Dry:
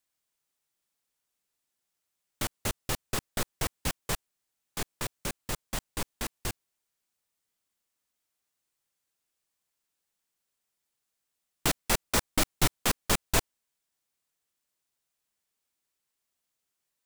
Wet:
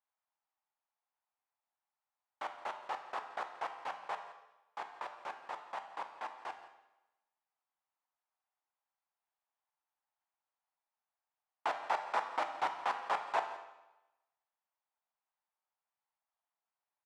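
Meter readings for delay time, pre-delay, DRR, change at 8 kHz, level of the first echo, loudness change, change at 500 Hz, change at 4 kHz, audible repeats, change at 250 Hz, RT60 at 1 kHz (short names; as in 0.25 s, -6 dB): 0.171 s, 11 ms, 5.5 dB, -29.0 dB, -17.5 dB, -8.5 dB, -6.5 dB, -16.5 dB, 1, -22.5 dB, 1.0 s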